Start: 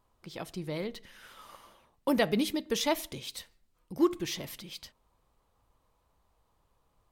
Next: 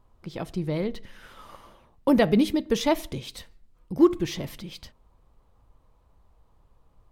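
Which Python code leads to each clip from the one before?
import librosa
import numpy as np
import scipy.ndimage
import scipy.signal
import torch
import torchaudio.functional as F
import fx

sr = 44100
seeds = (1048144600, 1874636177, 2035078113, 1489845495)

y = fx.tilt_eq(x, sr, slope=-2.0)
y = y * 10.0 ** (4.5 / 20.0)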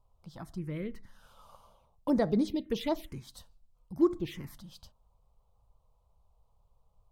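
y = fx.env_phaser(x, sr, low_hz=290.0, high_hz=2800.0, full_db=-16.5)
y = y * 10.0 ** (-7.0 / 20.0)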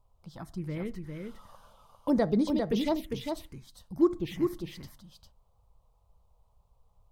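y = x + 10.0 ** (-5.0 / 20.0) * np.pad(x, (int(401 * sr / 1000.0), 0))[:len(x)]
y = y * 10.0 ** (1.5 / 20.0)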